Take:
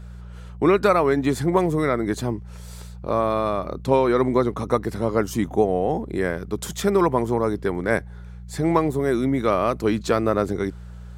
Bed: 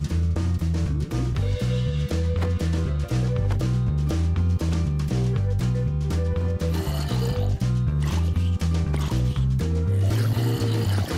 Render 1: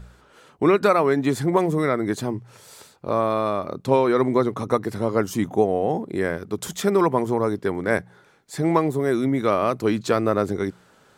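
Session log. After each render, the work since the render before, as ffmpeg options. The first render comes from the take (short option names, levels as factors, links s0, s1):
-af "bandreject=f=60:t=h:w=4,bandreject=f=120:t=h:w=4,bandreject=f=180:t=h:w=4"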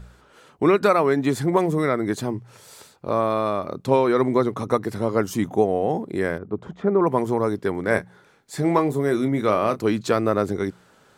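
-filter_complex "[0:a]asettb=1/sr,asplit=3[s0][s1][s2];[s0]atrim=end=6.384[s3];[s1]atrim=start=6.38:end=7.07,asetpts=PTS-STARTPTS,afade=t=in:d=0.004:c=qsin,afade=t=out:st=0.686:d=0.004:c=qsin,lowpass=1100[s4];[s2]atrim=start=7.066[s5];[s3][s4]acrossfade=d=0.004:c1=hsin:c2=qsin[s6];[s6][s5]acrossfade=d=0.004:c1=qsin:c2=hsin,asettb=1/sr,asplit=3[s7][s8][s9];[s7]atrim=end=7.884[s10];[s8]atrim=start=7.88:end=9.79,asetpts=PTS-STARTPTS,afade=t=in:d=0.004:c=qsin,afade=t=out:st=1.906:d=0.004:c=qsin,asplit=2[s11][s12];[s12]adelay=28,volume=0.282[s13];[s11][s13]amix=inputs=2:normalize=0,atrim=end_sample=84231[s14];[s9]atrim=start=9.786[s15];[s10][s14]acrossfade=d=0.004:c1=hsin:c2=qsin[s16];[s16][s15]acrossfade=d=0.004:c1=qsin:c2=hsin"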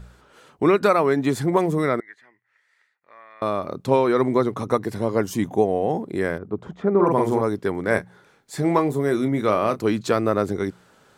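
-filter_complex "[0:a]asettb=1/sr,asplit=3[s0][s1][s2];[s0]atrim=end=2.004[s3];[s1]atrim=start=2:end=3.42,asetpts=PTS-STARTPTS,afade=t=in:d=0.004:c=qsin,afade=t=out:st=1.416:d=0.004:c=qsin,bandpass=f=1900:t=q:w=11[s4];[s2]atrim=start=3.416[s5];[s3][s4]acrossfade=d=0.004:c1=hsin:c2=qsin[s6];[s6][s5]acrossfade=d=0.004:c1=qsin:c2=hsin,asettb=1/sr,asplit=3[s7][s8][s9];[s7]atrim=end=4.774[s10];[s8]atrim=start=4.77:end=5.9,asetpts=PTS-STARTPTS,afade=t=in:d=0.004:c=qsin,afade=t=out:st=1.126:d=0.004:c=qsin,bandreject=f=1300:w=7.9[s11];[s9]atrim=start=5.896[s12];[s10][s11]acrossfade=d=0.004:c1=hsin:c2=qsin[s13];[s13][s12]acrossfade=d=0.004:c1=qsin:c2=hsin,asettb=1/sr,asplit=3[s14][s15][s16];[s14]atrim=end=6.904[s17];[s15]atrim=start=6.9:end=7.41,asetpts=PTS-STARTPTS,afade=t=in:d=0.004:c=qsin,afade=t=out:st=0.506:d=0.004:c=qsin,asplit=2[s18][s19];[s19]adelay=45,volume=0.75[s20];[s18][s20]amix=inputs=2:normalize=0,atrim=end_sample=22491[s21];[s16]atrim=start=7.406[s22];[s17][s21]acrossfade=d=0.004:c1=hsin:c2=qsin[s23];[s23][s22]acrossfade=d=0.004:c1=qsin:c2=hsin"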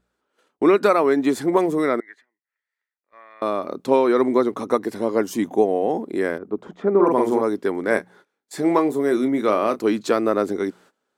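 -af "lowshelf=f=180:t=q:w=1.5:g=-12,agate=range=0.0891:threshold=0.00447:ratio=16:detection=peak"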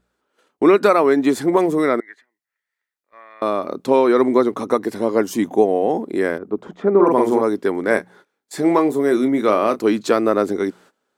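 -af "volume=1.41,alimiter=limit=0.708:level=0:latency=1"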